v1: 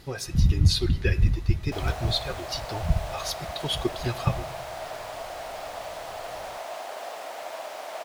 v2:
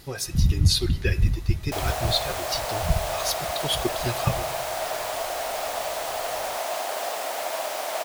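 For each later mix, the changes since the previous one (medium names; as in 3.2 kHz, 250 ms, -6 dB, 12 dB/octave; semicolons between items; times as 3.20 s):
background +6.5 dB; master: remove low-pass 4 kHz 6 dB/octave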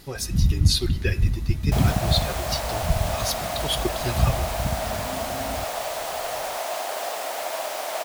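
first sound: unmuted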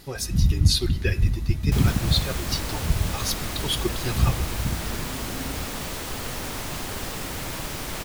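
second sound: remove resonant high-pass 660 Hz, resonance Q 6.1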